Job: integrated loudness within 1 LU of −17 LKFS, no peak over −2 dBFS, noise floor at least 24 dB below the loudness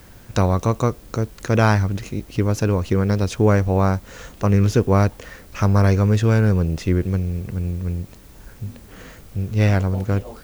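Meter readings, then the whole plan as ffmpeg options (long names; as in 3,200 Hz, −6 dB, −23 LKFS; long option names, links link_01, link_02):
integrated loudness −20.0 LKFS; sample peak −4.0 dBFS; target loudness −17.0 LKFS
→ -af "volume=3dB,alimiter=limit=-2dB:level=0:latency=1"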